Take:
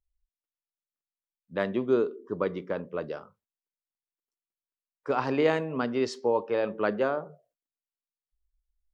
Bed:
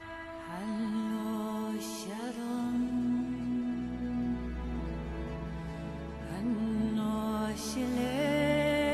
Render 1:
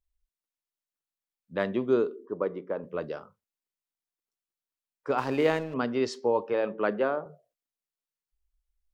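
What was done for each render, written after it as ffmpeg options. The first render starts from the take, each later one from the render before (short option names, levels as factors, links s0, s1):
-filter_complex "[0:a]asplit=3[s0][s1][s2];[s0]afade=t=out:st=2.25:d=0.02[s3];[s1]bandpass=f=560:t=q:w=0.62,afade=t=in:st=2.25:d=0.02,afade=t=out:st=2.82:d=0.02[s4];[s2]afade=t=in:st=2.82:d=0.02[s5];[s3][s4][s5]amix=inputs=3:normalize=0,asettb=1/sr,asplit=3[s6][s7][s8];[s6]atrim=end=5.184[s9];[s7]atrim=start=5.18:end=5.74,asetpts=PTS-STARTPTS,afade=t=in:d=0.004:c=qsin,afade=t=out:st=0.556:d=0.004:c=qsin,aeval=exprs='sgn(val(0))*max(abs(val(0))-0.00668,0)':c=same[s10];[s8]atrim=start=5.736[s11];[s9][s10]acrossfade=d=0.004:c1=hsin:c2=qsin[s12];[s12][s11]acrossfade=d=0.004:c1=qsin:c2=hsin,asettb=1/sr,asplit=3[s13][s14][s15];[s13]atrim=end=6.534[s16];[s14]atrim=start=6.53:end=7.26,asetpts=PTS-STARTPTS,afade=t=in:d=0.004:c=qsin,afade=t=out:st=0.726:d=0.004:c=qsin,highpass=160,lowpass=3700[s17];[s15]atrim=start=7.256[s18];[s16][s17]acrossfade=d=0.004:c1=hsin:c2=qsin[s19];[s19][s18]acrossfade=d=0.004:c1=qsin:c2=hsin"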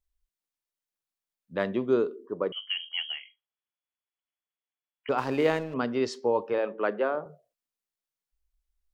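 -filter_complex "[0:a]asettb=1/sr,asplit=3[s0][s1][s2];[s0]atrim=end=2.524[s3];[s1]atrim=start=2.52:end=5.09,asetpts=PTS-STARTPTS,afade=t=in:d=0.004:c=qsin,afade=t=out:st=2.566:d=0.004:c=qsin,lowpass=f=2900:t=q:w=0.5098,lowpass=f=2900:t=q:w=0.6013,lowpass=f=2900:t=q:w=0.9,lowpass=f=2900:t=q:w=2.563,afreqshift=-3400[s4];[s2]atrim=start=5.086[s5];[s3][s4]acrossfade=d=0.004:c1=hsin:c2=qsin[s6];[s6][s5]acrossfade=d=0.004:c1=qsin:c2=hsin,asettb=1/sr,asplit=3[s7][s8][s9];[s7]atrim=end=6.584[s10];[s8]atrim=start=6.58:end=7.15,asetpts=PTS-STARTPTS,afade=t=in:d=0.004:c=qsin,afade=t=out:st=0.566:d=0.004:c=qsin,highpass=270,lowpass=4300[s11];[s9]atrim=start=7.146[s12];[s10][s11]acrossfade=d=0.004:c1=hsin:c2=qsin[s13];[s13][s12]acrossfade=d=0.004:c1=qsin:c2=hsin"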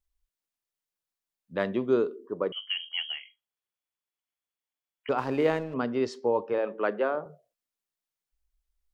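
-filter_complex "[0:a]asettb=1/sr,asplit=3[s0][s1][s2];[s0]atrim=end=5.134[s3];[s1]atrim=start=5.13:end=6.67,asetpts=PTS-STARTPTS,afade=t=in:d=0.004:c=qsin,afade=t=out:st=1.536:d=0.004:c=qsin,highshelf=f=2200:g=-5.5[s4];[s2]atrim=start=6.666[s5];[s3][s4]acrossfade=d=0.004:c1=hsin:c2=qsin[s6];[s6][s5]acrossfade=d=0.004:c1=qsin:c2=hsin"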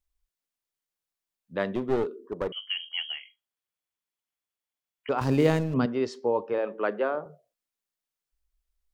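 -filter_complex "[0:a]asettb=1/sr,asplit=3[s0][s1][s2];[s0]atrim=end=1.694[s3];[s1]atrim=start=1.69:end=2.63,asetpts=PTS-STARTPTS,afade=t=in:d=0.004:c=qsin,afade=t=out:st=0.936:d=0.004:c=qsin,aeval=exprs='clip(val(0),-1,0.0422)':c=same[s4];[s2]atrim=start=2.626[s5];[s3][s4]acrossfade=d=0.004:c1=hsin:c2=qsin[s6];[s6][s5]acrossfade=d=0.004:c1=qsin:c2=hsin,asettb=1/sr,asplit=3[s7][s8][s9];[s7]atrim=end=5.214[s10];[s8]atrim=start=5.21:end=5.86,asetpts=PTS-STARTPTS,afade=t=in:d=0.004:c=qsin,afade=t=out:st=0.646:d=0.004:c=qsin,bass=f=250:g=14,treble=f=4000:g=13[s11];[s9]atrim=start=5.856[s12];[s10][s11]acrossfade=d=0.004:c1=hsin:c2=qsin[s13];[s13][s12]acrossfade=d=0.004:c1=qsin:c2=hsin"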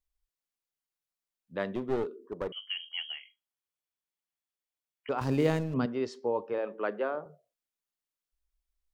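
-af "volume=0.596"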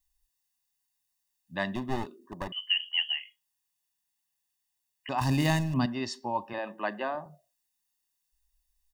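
-af "highshelf=f=3200:g=10,aecho=1:1:1.1:0.94"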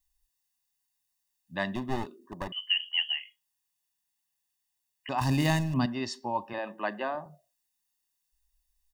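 -af anull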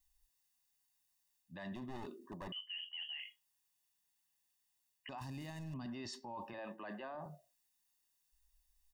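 -af "areverse,acompressor=threshold=0.0178:ratio=6,areverse,alimiter=level_in=5.31:limit=0.0631:level=0:latency=1:release=12,volume=0.188"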